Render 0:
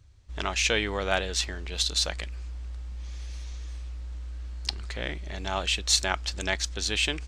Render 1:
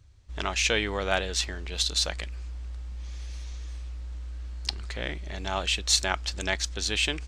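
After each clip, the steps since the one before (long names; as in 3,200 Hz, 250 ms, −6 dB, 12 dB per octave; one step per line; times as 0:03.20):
no processing that can be heard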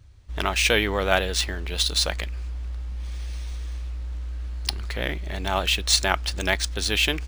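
pitch vibrato 8.6 Hz 38 cents
linearly interpolated sample-rate reduction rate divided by 3×
level +5.5 dB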